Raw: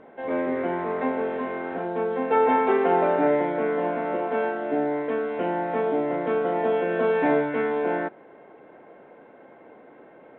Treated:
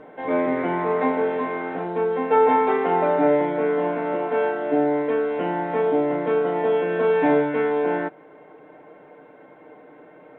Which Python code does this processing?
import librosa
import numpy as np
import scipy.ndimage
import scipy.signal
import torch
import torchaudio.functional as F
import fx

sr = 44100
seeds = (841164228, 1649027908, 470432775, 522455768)

p1 = x + 0.53 * np.pad(x, (int(6.6 * sr / 1000.0), 0))[:len(x)]
p2 = fx.rider(p1, sr, range_db=10, speed_s=2.0)
p3 = p1 + (p2 * 10.0 ** (0.0 / 20.0))
y = p3 * 10.0 ** (-5.5 / 20.0)